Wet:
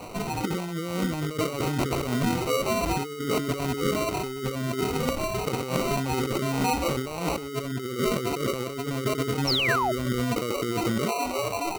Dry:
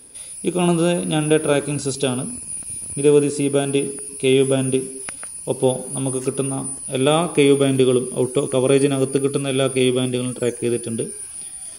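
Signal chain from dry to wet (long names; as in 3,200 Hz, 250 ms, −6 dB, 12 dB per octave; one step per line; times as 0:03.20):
gate on every frequency bin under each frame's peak −20 dB strong
dynamic equaliser 370 Hz, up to −3 dB, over −23 dBFS, Q 0.93
compressor whose output falls as the input rises −28 dBFS, ratio −1
decimation without filtering 26×
sound drawn into the spectrogram fall, 0:09.47–0:09.92, 590–5,800 Hz −25 dBFS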